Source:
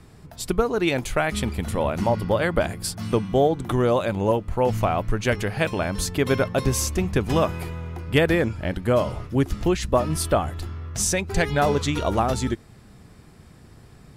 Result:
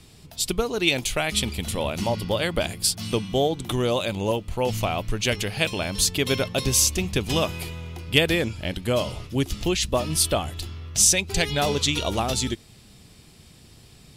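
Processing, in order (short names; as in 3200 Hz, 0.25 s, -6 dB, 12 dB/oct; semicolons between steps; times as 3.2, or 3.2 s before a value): resonant high shelf 2200 Hz +9.5 dB, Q 1.5; gain -3 dB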